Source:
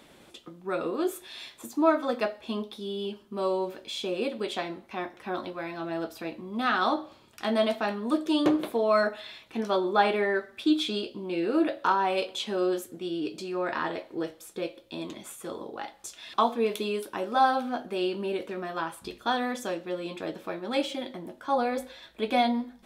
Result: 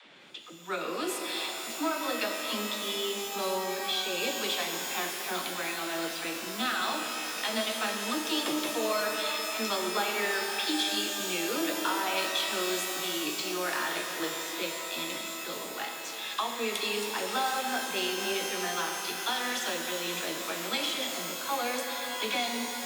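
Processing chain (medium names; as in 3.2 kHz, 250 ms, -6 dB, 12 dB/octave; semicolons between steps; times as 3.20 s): level-controlled noise filter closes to 2.8 kHz; in parallel at -7 dB: saturation -26 dBFS, distortion -9 dB; on the sum: tilt shelf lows -9 dB, about 1.5 kHz; compression, threshold -28 dBFS, peak gain reduction 10 dB; high-pass 110 Hz 24 dB/octave; treble shelf 10 kHz -9.5 dB; phase dispersion lows, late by 62 ms, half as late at 310 Hz; pitch-shifted reverb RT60 4 s, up +12 st, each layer -2 dB, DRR 3.5 dB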